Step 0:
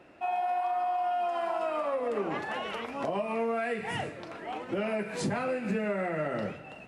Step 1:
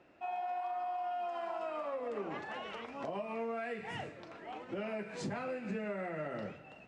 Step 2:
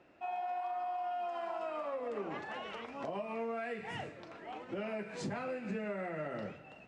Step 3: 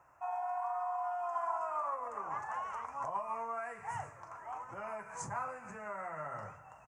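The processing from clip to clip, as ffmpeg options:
ffmpeg -i in.wav -af "lowpass=frequency=7800:width=0.5412,lowpass=frequency=7800:width=1.3066,volume=-8dB" out.wav
ffmpeg -i in.wav -af anull out.wav
ffmpeg -i in.wav -af "firequalizer=gain_entry='entry(120,0);entry(190,-16);entry(330,-18);entry(1000,10);entry(1600,-2);entry(3700,-25);entry(6300,6)':delay=0.05:min_phase=1,volume=1.5dB" out.wav

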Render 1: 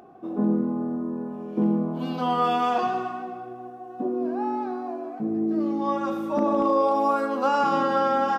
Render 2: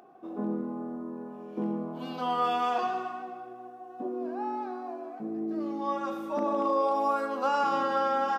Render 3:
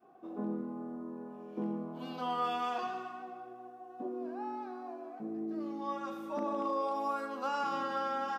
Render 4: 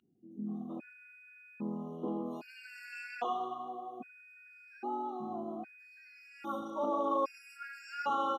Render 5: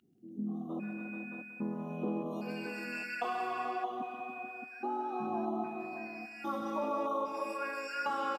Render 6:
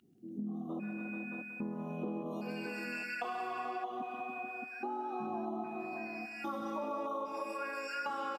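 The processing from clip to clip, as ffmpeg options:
ffmpeg -i in.wav -af "highpass=frequency=400:poles=1,volume=-3.5dB" out.wav
ffmpeg -i in.wav -af "adynamicequalizer=threshold=0.0126:dfrequency=590:dqfactor=0.78:tfrequency=590:tqfactor=0.78:attack=5:release=100:ratio=0.375:range=2.5:mode=cutabove:tftype=bell,volume=-4.5dB" out.wav
ffmpeg -i in.wav -filter_complex "[0:a]acrossover=split=240|4900[link_01][link_02][link_03];[link_03]adelay=310[link_04];[link_02]adelay=460[link_05];[link_01][link_05][link_04]amix=inputs=3:normalize=0,aeval=exprs='val(0)+0.00126*sin(2*PI*2500*n/s)':channel_layout=same,afftfilt=real='re*gt(sin(2*PI*0.62*pts/sr)*(1-2*mod(floor(b*sr/1024/1400),2)),0)':imag='im*gt(sin(2*PI*0.62*pts/sr)*(1-2*mod(floor(b*sr/1024/1400),2)),0)':win_size=1024:overlap=0.75,volume=3.5dB" out.wav
ffmpeg -i in.wav -filter_complex "[0:a]asplit=2[link_01][link_02];[link_02]aecho=0:1:182|364|546|728|910:0.237|0.111|0.0524|0.0246|0.0116[link_03];[link_01][link_03]amix=inputs=2:normalize=0,acompressor=threshold=-36dB:ratio=6,asplit=2[link_04][link_05];[link_05]aecho=0:1:132|286|435|621:0.251|0.355|0.335|0.376[link_06];[link_04][link_06]amix=inputs=2:normalize=0,volume=4dB" out.wav
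ffmpeg -i in.wav -af "acompressor=threshold=-41dB:ratio=2.5,volume=3dB" out.wav

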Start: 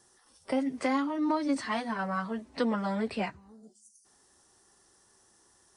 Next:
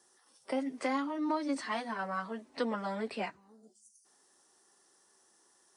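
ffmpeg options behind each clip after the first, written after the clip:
ffmpeg -i in.wav -af "highpass=250,volume=-3dB" out.wav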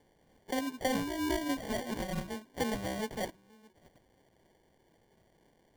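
ffmpeg -i in.wav -af "acrusher=samples=34:mix=1:aa=0.000001" out.wav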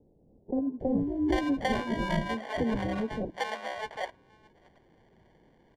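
ffmpeg -i in.wav -filter_complex "[0:a]acrossover=split=570[link_01][link_02];[link_02]adelay=800[link_03];[link_01][link_03]amix=inputs=2:normalize=0,adynamicequalizer=threshold=0.00224:dfrequency=5900:dqfactor=0.72:tfrequency=5900:tqfactor=0.72:attack=5:release=100:ratio=0.375:range=2:mode=cutabove:tftype=bell,adynamicsmooth=sensitivity=1.5:basefreq=3400,volume=7dB" out.wav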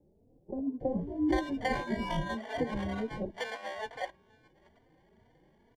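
ffmpeg -i in.wav -filter_complex "[0:a]asplit=2[link_01][link_02];[link_02]adelay=3.3,afreqshift=2.2[link_03];[link_01][link_03]amix=inputs=2:normalize=1" out.wav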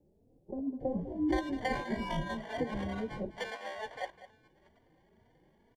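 ffmpeg -i in.wav -af "aecho=1:1:203:0.178,volume=-2dB" out.wav

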